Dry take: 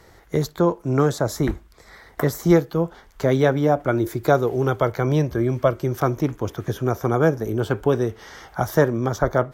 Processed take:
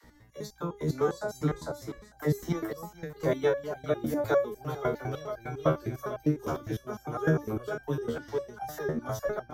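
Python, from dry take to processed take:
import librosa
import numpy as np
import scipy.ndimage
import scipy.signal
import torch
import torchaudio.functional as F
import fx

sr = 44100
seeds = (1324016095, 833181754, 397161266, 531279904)

p1 = fx.dereverb_blind(x, sr, rt60_s=0.61)
p2 = fx.add_hum(p1, sr, base_hz=60, snr_db=23)
p3 = fx.dispersion(p2, sr, late='lows', ms=43.0, hz=360.0)
p4 = p3 + fx.echo_feedback(p3, sr, ms=450, feedback_pct=26, wet_db=-5, dry=0)
p5 = fx.resonator_held(p4, sr, hz=9.9, low_hz=78.0, high_hz=790.0)
y = p5 * 10.0 ** (2.0 / 20.0)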